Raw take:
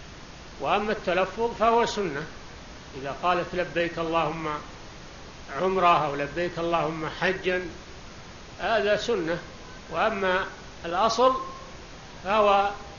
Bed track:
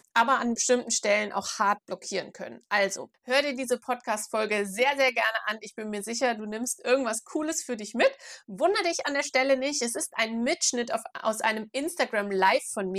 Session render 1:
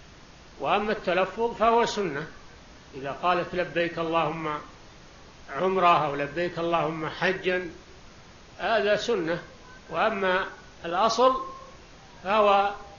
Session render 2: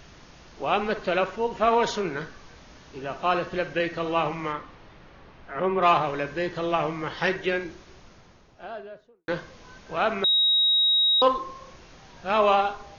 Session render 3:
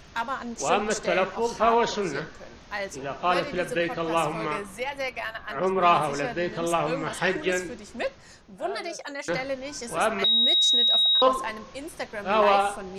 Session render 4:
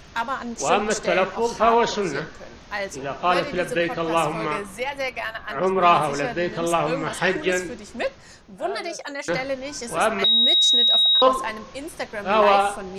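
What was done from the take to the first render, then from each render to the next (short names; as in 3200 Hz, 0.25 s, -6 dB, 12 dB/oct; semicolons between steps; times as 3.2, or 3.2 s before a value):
noise print and reduce 6 dB
4.52–5.81 LPF 3500 Hz -> 2200 Hz; 7.66–9.28 studio fade out; 10.24–11.22 bleep 3800 Hz -17.5 dBFS
add bed track -7.5 dB
gain +3.5 dB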